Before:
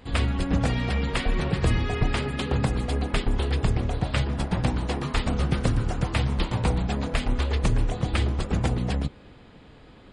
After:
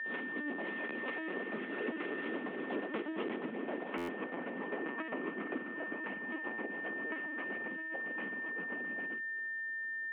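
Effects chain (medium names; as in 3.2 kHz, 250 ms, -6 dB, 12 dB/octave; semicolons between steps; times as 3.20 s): CVSD coder 16 kbps; Doppler pass-by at 3.54 s, 23 m/s, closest 17 m; dynamic bell 350 Hz, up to +7 dB, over -50 dBFS, Q 2.5; LPC vocoder at 8 kHz pitch kept; whistle 1.8 kHz -40 dBFS; compression 6:1, threshold -35 dBFS, peak gain reduction 15.5 dB; steep high-pass 230 Hz 36 dB/octave; distance through air 89 m; buffer glitch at 3.97 s, samples 512, times 9; trim +4 dB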